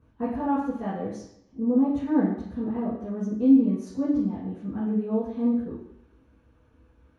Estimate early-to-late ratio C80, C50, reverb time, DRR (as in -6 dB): 6.5 dB, 3.5 dB, 0.70 s, -12.0 dB